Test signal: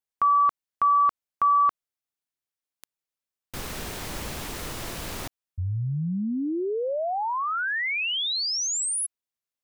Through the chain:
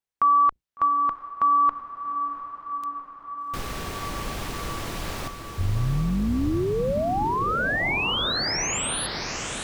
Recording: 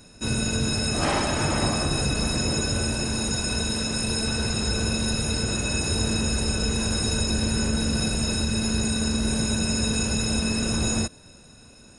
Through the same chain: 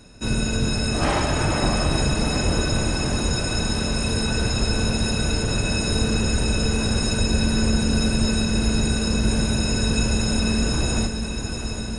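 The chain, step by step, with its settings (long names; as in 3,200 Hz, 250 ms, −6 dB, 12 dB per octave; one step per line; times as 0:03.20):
sub-octave generator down 2 octaves, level −3 dB
high-shelf EQ 6,600 Hz −7.5 dB
feedback delay with all-pass diffusion 750 ms, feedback 72%, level −8 dB
level +2 dB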